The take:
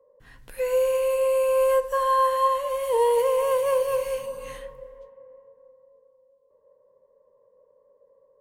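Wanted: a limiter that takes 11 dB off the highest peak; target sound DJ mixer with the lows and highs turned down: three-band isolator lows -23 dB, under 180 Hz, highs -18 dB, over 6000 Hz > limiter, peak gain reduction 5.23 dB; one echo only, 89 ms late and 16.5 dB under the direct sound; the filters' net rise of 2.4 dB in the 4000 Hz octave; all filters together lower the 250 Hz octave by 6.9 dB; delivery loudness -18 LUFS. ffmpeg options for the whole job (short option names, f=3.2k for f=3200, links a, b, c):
-filter_complex "[0:a]equalizer=f=250:t=o:g=-7.5,equalizer=f=4k:t=o:g=4.5,alimiter=limit=-23.5dB:level=0:latency=1,acrossover=split=180 6000:gain=0.0708 1 0.126[a][b][c];[a][b][c]amix=inputs=3:normalize=0,aecho=1:1:89:0.15,volume=15.5dB,alimiter=limit=-11dB:level=0:latency=1"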